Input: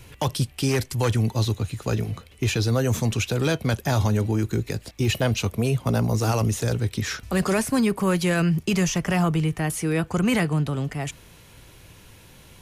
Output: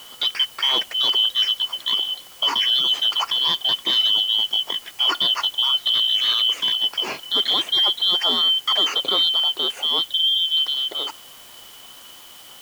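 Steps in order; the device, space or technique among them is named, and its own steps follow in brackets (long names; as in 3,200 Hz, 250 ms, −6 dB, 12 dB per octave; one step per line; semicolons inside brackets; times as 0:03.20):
0:10.11–0:10.57: Butterworth low-pass 710 Hz
split-band scrambled radio (band-splitting scrambler in four parts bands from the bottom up 2413; band-pass filter 330–3,200 Hz; white noise bed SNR 24 dB)
level +5 dB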